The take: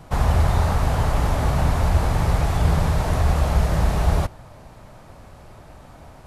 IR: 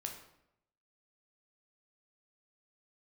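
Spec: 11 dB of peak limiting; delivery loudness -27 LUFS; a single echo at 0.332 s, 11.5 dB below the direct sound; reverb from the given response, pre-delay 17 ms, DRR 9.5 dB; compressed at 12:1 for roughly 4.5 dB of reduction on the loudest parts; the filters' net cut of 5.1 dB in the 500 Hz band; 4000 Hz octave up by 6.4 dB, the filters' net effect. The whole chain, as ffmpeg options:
-filter_complex "[0:a]equalizer=f=500:t=o:g=-7,equalizer=f=4k:t=o:g=8,acompressor=threshold=-18dB:ratio=12,alimiter=limit=-21.5dB:level=0:latency=1,aecho=1:1:332:0.266,asplit=2[a][b];[1:a]atrim=start_sample=2205,adelay=17[c];[b][c]afir=irnorm=-1:irlink=0,volume=-8dB[d];[a][d]amix=inputs=2:normalize=0,volume=3dB"

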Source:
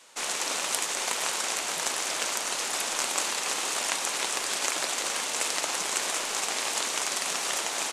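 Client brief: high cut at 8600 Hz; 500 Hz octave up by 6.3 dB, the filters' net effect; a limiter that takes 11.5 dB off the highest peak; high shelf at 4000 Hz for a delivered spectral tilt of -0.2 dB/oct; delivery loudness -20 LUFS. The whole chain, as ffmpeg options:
-af "lowpass=8.6k,equalizer=f=500:t=o:g=8,highshelf=f=4k:g=-8.5,volume=12.5dB,alimiter=limit=-9dB:level=0:latency=1"

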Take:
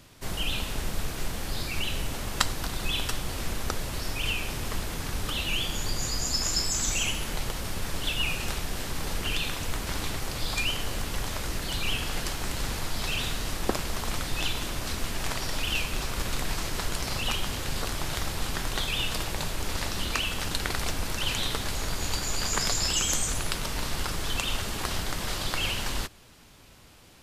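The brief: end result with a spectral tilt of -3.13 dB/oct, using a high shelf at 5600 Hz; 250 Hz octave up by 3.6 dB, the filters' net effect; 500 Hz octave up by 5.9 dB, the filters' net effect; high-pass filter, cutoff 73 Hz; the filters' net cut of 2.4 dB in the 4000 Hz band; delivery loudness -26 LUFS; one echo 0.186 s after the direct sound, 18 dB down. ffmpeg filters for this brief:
-af "highpass=73,equalizer=f=250:t=o:g=3,equalizer=f=500:t=o:g=6.5,equalizer=f=4k:t=o:g=-5.5,highshelf=f=5.6k:g=5,aecho=1:1:186:0.126,volume=3.5dB"

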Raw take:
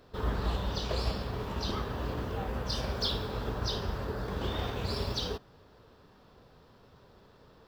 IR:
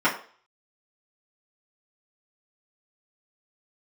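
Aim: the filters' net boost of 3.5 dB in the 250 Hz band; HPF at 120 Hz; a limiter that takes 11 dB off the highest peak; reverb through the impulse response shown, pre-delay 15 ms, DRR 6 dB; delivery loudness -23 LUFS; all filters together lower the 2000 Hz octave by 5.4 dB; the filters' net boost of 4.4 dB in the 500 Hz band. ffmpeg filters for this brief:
-filter_complex "[0:a]highpass=120,equalizer=f=250:t=o:g=4,equalizer=f=500:t=o:g=4.5,equalizer=f=2k:t=o:g=-8,alimiter=level_in=5.5dB:limit=-24dB:level=0:latency=1,volume=-5.5dB,asplit=2[a][b];[1:a]atrim=start_sample=2205,adelay=15[c];[b][c]afir=irnorm=-1:irlink=0,volume=-23dB[d];[a][d]amix=inputs=2:normalize=0,volume=15dB"

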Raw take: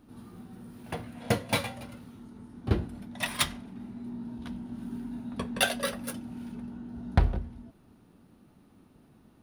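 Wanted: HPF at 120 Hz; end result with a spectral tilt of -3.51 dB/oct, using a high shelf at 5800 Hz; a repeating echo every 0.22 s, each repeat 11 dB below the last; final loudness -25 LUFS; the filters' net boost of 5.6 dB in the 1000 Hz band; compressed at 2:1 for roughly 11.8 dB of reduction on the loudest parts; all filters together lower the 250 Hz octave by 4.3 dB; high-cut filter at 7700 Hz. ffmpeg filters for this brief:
-af "highpass=120,lowpass=7.7k,equalizer=f=250:t=o:g=-5,equalizer=f=1k:t=o:g=8,highshelf=f=5.8k:g=-6.5,acompressor=threshold=-43dB:ratio=2,aecho=1:1:220|440|660:0.282|0.0789|0.0221,volume=18.5dB"

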